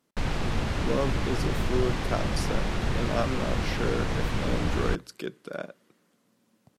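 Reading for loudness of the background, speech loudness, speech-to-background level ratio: −30.0 LKFS, −33.5 LKFS, −3.5 dB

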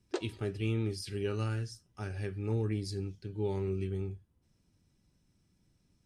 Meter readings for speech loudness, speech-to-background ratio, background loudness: −36.0 LKFS, 5.0 dB, −41.0 LKFS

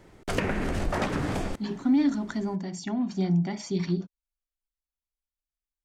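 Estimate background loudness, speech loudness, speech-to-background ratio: −30.0 LKFS, −28.0 LKFS, 2.0 dB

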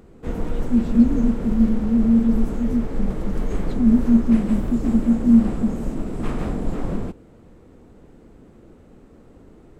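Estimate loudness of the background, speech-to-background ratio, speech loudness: −28.5 LKFS, 8.5 dB, −20.0 LKFS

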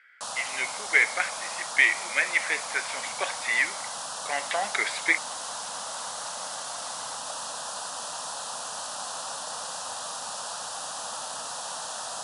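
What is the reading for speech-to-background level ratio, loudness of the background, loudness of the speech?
7.0 dB, −33.5 LKFS, −26.5 LKFS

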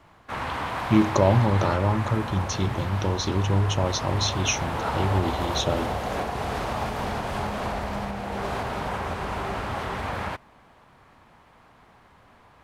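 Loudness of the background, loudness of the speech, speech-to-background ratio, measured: −30.5 LKFS, −25.0 LKFS, 5.5 dB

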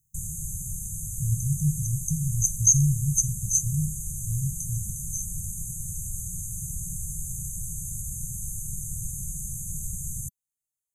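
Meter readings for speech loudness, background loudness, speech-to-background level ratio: −25.5 LKFS, −33.0 LKFS, 7.5 dB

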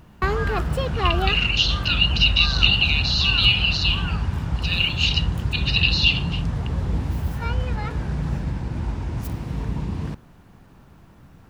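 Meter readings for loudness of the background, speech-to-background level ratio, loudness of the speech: −26.0 LKFS, 6.5 dB, −19.5 LKFS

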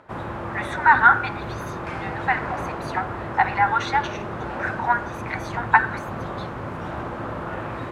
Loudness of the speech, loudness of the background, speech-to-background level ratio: −22.0 LKFS, −31.5 LKFS, 9.5 dB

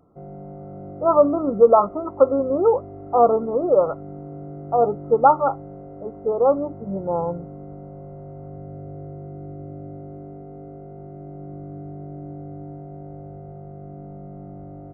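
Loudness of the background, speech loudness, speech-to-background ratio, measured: −38.0 LKFS, −19.5 LKFS, 18.5 dB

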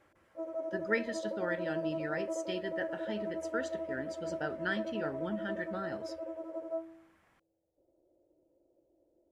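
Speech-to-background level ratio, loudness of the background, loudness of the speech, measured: 1.0 dB, −39.5 LKFS, −38.5 LKFS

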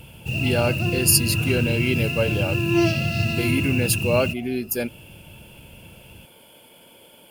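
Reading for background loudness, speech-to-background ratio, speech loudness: −23.0 LKFS, −1.0 dB, −24.0 LKFS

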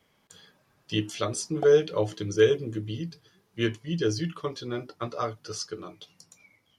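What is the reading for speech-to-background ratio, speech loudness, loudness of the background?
12.5 dB, −28.0 LKFS, −40.5 LKFS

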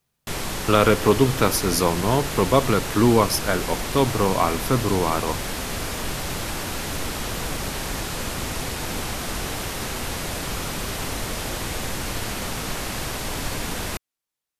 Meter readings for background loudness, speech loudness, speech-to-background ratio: −28.5 LKFS, −21.0 LKFS, 7.5 dB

